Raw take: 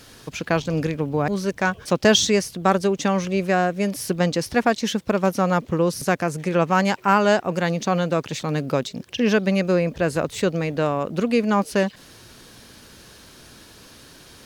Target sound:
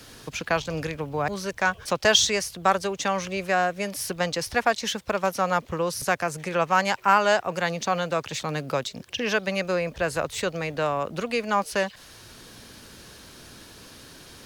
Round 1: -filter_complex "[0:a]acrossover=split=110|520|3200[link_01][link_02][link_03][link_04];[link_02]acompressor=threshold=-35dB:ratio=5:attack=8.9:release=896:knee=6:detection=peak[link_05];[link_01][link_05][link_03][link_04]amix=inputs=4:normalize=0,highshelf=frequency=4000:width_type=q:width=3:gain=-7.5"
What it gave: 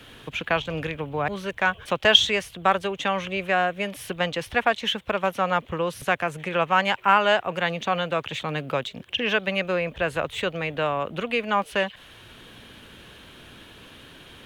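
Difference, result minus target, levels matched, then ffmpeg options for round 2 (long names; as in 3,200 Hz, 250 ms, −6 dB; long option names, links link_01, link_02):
8,000 Hz band −12.0 dB
-filter_complex "[0:a]acrossover=split=110|520|3200[link_01][link_02][link_03][link_04];[link_02]acompressor=threshold=-35dB:ratio=5:attack=8.9:release=896:knee=6:detection=peak[link_05];[link_01][link_05][link_03][link_04]amix=inputs=4:normalize=0"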